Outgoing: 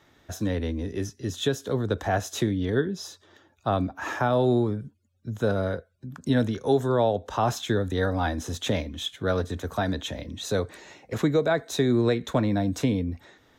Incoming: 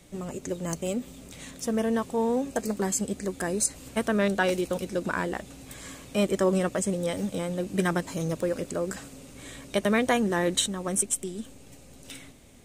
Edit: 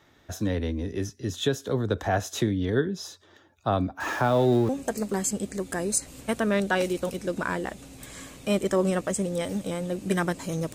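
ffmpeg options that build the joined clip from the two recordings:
-filter_complex "[0:a]asettb=1/sr,asplit=3[a][b][c];[a]atrim=end=4.004[d];[b]atrim=start=4:end=4.69,asetpts=PTS-STARTPTS,afade=t=in:d=0.004:c=qsin,afade=t=out:st=0.686:d=0.004:c=qsin,aeval=exprs='val(0)+0.5*0.015*sgn(val(0))':c=same[e];[c]atrim=start=4.686[f];[d][e]acrossfade=d=0.004:c1=hsin:c2=qsin[g];[g][f]acrossfade=d=0.004:c1=qsin:c2=hsin,apad=whole_dur=10.74,atrim=end=10.74,atrim=end=4.692[h];[1:a]atrim=start=2.368:end=8.42[i];[h][i]acrossfade=d=0.004:c1=hsin:c2=hsin"

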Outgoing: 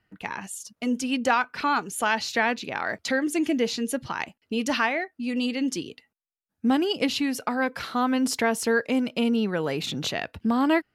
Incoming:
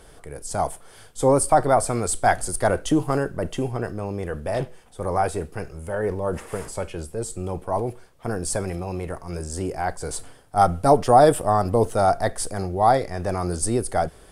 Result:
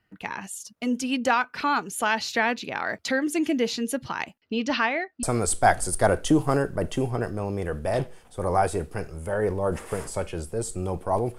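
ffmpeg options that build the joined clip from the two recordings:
-filter_complex "[0:a]asettb=1/sr,asplit=3[a][b][c];[a]atrim=end=4.404[d];[b]atrim=start=4.4:end=5.23,asetpts=PTS-STARTPTS,afade=t=in:d=0.004:c=qsin,afade=t=out:st=0.826:d=0.004:c=qsin,lowpass=f=5.5k:w=0.5412,lowpass=f=5.5k:w=1.3066[e];[c]atrim=start=5.226[f];[d][e]acrossfade=d=0.004:c1=hsin:c2=qsin[g];[g][f]acrossfade=d=0.004:c1=qsin:c2=hsin,apad=whole_dur=11.38,atrim=end=11.38,atrim=end=5.232[h];[1:a]atrim=start=1.838:end=7.99[i];[h][i]acrossfade=d=0.004:c1=hsin:c2=hsin"

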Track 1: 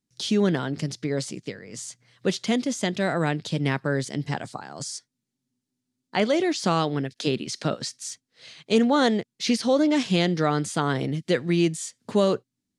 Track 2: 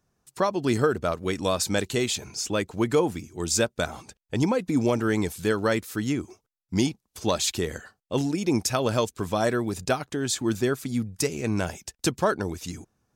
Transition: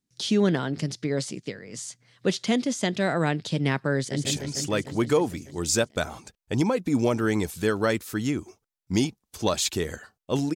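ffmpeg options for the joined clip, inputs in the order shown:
-filter_complex "[0:a]apad=whole_dur=10.55,atrim=end=10.55,atrim=end=4.252[a];[1:a]atrim=start=2.068:end=8.37[b];[a][b]acrossfade=d=0.004:c1=hsin:c2=hsin,asplit=2[c][d];[d]afade=t=in:st=3.96:d=0.01,afade=t=out:st=4.25:d=0.01,aecho=0:1:150|300|450|600|750|900|1050|1200|1350|1500|1650|1800:0.630957|0.504766|0.403813|0.32305|0.25844|0.206752|0.165402|0.132321|0.105857|0.0846857|0.0677485|0.0541988[e];[c][e]amix=inputs=2:normalize=0"

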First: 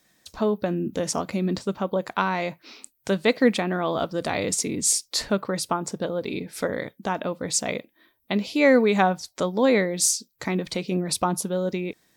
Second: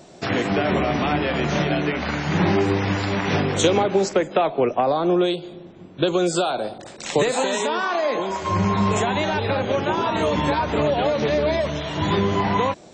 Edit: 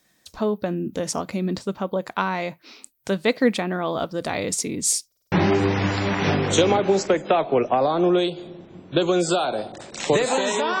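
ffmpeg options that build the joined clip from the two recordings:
-filter_complex "[0:a]apad=whole_dur=10.8,atrim=end=10.8,asplit=5[a][b][c][d][e];[a]atrim=end=5.122[f];[b]atrim=start=5.068:end=5.122[g];[c]atrim=start=5.068:end=5.122[h];[d]atrim=start=5.068:end=5.122[i];[e]atrim=start=5.068:end=5.122[j];[1:a]atrim=start=2.378:end=7.86[k];[f][g]acrossfade=d=0.004:c1=hsin:c2=hsin[l];[l][h]acrossfade=d=0.004:c1=hsin:c2=hsin[m];[m][i]acrossfade=d=0.004:c1=hsin:c2=hsin[n];[n][j]acrossfade=d=0.004:c1=hsin:c2=hsin[o];[o][k]acrossfade=d=0.004:c1=hsin:c2=hsin"

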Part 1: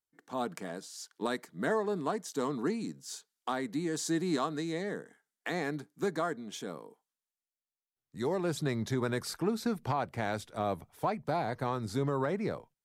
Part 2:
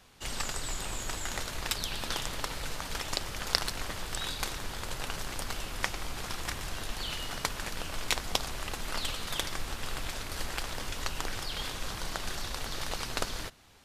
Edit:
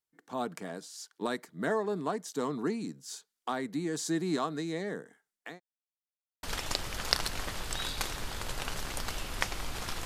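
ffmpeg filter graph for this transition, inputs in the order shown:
-filter_complex "[0:a]apad=whole_dur=10.05,atrim=end=10.05,asplit=2[a][b];[a]atrim=end=5.6,asetpts=PTS-STARTPTS,afade=t=out:st=5.18:d=0.42:c=qsin[c];[b]atrim=start=5.6:end=6.43,asetpts=PTS-STARTPTS,volume=0[d];[1:a]atrim=start=2.85:end=6.47,asetpts=PTS-STARTPTS,afade=t=in:d=0.004:c=hsin[e];[c][d][e]concat=n=3:v=0:a=1"

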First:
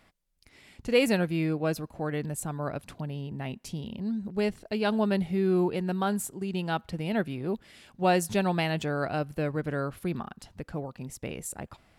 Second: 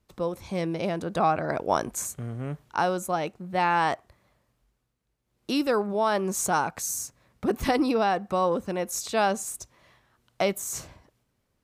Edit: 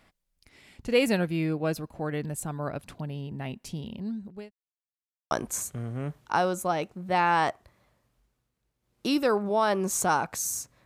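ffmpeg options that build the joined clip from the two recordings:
-filter_complex "[0:a]apad=whole_dur=10.85,atrim=end=10.85,asplit=2[a][b];[a]atrim=end=4.51,asetpts=PTS-STARTPTS,afade=t=out:st=3.76:d=0.75:c=qsin[c];[b]atrim=start=4.51:end=5.31,asetpts=PTS-STARTPTS,volume=0[d];[1:a]atrim=start=1.75:end=7.29,asetpts=PTS-STARTPTS,afade=t=in:d=0.004:c=hsin[e];[c][d][e]concat=n=3:v=0:a=1"

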